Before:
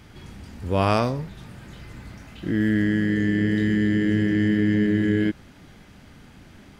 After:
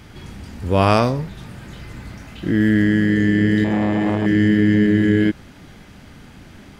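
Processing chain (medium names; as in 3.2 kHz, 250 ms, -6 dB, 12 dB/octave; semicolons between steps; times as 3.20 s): 3.64–4.26 s: transformer saturation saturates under 640 Hz; trim +5.5 dB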